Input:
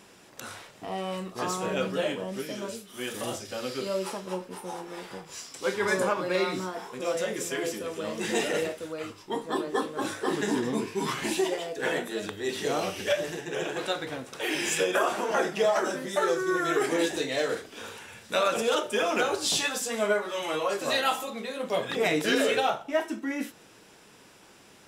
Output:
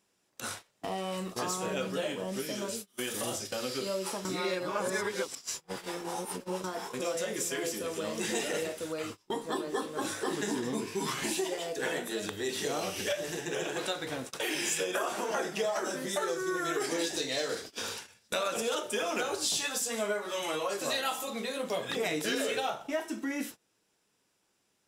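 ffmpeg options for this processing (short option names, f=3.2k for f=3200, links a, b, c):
-filter_complex "[0:a]asettb=1/sr,asplit=3[a][b][c];[a]atrim=end=16.804[d];[b]atrim=start=16.8:end=18.28,asetpts=PTS-STARTPTS,afade=t=in:d=0.004:c=qsin,afade=t=out:st=1.476:d=0.004:c=qsin,equalizer=f=4.9k:t=o:w=0.6:g=8[e];[c]atrim=start=18.276[f];[d][e]acrossfade=d=0.004:c1=hsin:c2=qsin[g];[g][f]acrossfade=d=0.004:c1=qsin:c2=hsin,asplit=3[h][i][j];[h]atrim=end=4.252[k];[i]atrim=start=4.248:end=6.642,asetpts=PTS-STARTPTS,areverse[l];[j]atrim=start=6.638[m];[k][l]acrossfade=d=0.004:c1=hsin:c2=hsin[n];[n][m]acrossfade=d=0.004:c1=hsin:c2=hsin,agate=range=-27dB:threshold=-41dB:ratio=16:detection=peak,bass=f=250:g=0,treble=f=4k:g=6,acompressor=threshold=-39dB:ratio=2.5,volume=4.5dB"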